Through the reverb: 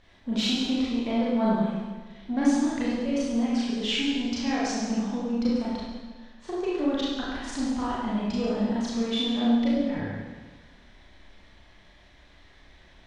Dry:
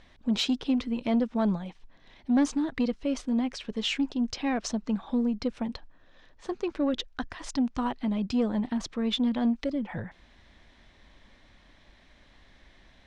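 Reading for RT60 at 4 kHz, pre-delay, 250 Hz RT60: 1.3 s, 30 ms, 1.4 s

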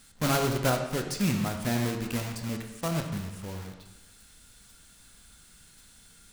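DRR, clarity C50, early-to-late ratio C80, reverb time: 4.0 dB, 6.5 dB, 8.0 dB, 1.0 s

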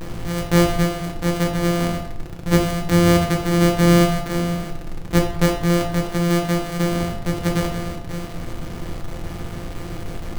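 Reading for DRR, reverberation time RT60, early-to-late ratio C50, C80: 1.0 dB, 0.80 s, 7.5 dB, 11.0 dB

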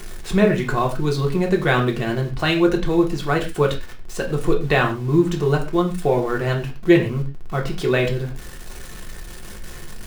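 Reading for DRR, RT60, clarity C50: 0.0 dB, not exponential, 11.0 dB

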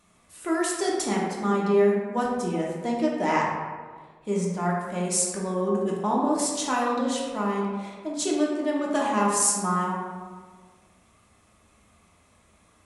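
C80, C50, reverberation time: 3.0 dB, 0.5 dB, 1.6 s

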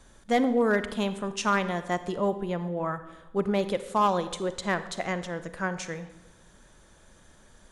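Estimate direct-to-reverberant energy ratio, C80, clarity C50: 11.5 dB, 15.0 dB, 12.5 dB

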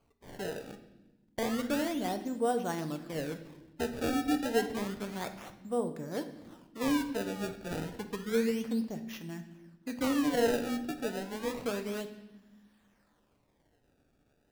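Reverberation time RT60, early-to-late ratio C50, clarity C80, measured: 1.1 s, 11.0 dB, 13.5 dB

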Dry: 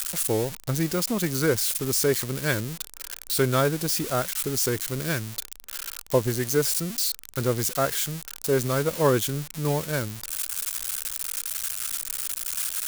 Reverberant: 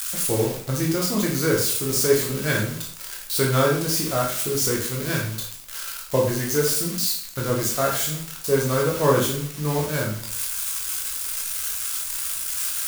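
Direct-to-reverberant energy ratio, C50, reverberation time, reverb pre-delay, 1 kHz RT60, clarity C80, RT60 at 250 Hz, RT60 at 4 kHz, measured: -2.5 dB, 4.5 dB, 0.60 s, 7 ms, 0.55 s, 8.5 dB, 0.55 s, 0.50 s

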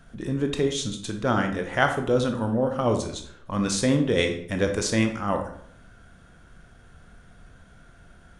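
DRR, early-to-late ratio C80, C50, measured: 4.5 dB, 12.0 dB, 8.0 dB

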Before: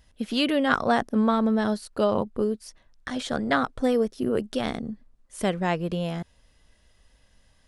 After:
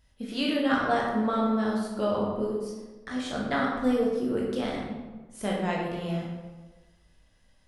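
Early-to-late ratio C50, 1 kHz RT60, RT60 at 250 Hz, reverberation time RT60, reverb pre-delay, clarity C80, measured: 1.0 dB, 1.2 s, 1.3 s, 1.3 s, 14 ms, 4.0 dB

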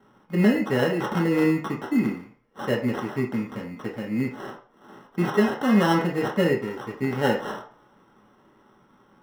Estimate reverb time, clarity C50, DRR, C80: 0.50 s, 9.0 dB, -1.5 dB, 13.5 dB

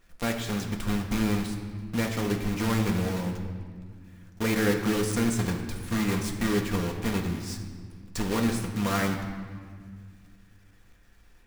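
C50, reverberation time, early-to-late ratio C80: 6.5 dB, 1.8 s, 7.5 dB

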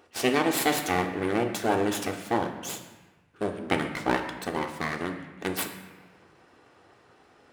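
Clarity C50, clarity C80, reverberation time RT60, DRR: 8.0 dB, 9.5 dB, 1.2 s, 3.5 dB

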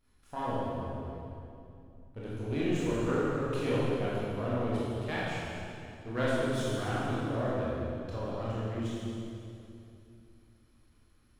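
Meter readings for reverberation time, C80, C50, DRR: 2.7 s, -2.0 dB, -4.0 dB, -8.5 dB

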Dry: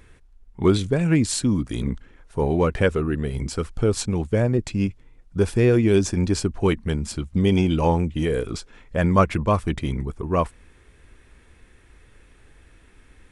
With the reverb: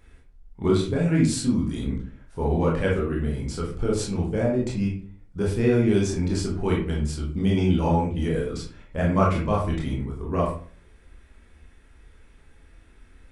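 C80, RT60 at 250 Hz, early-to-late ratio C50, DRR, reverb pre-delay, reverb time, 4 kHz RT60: 10.0 dB, 0.50 s, 5.0 dB, -3.5 dB, 20 ms, 0.45 s, 0.30 s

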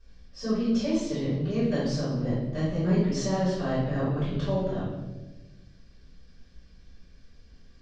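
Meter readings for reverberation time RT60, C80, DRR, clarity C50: 1.2 s, 4.0 dB, -14.0 dB, 0.0 dB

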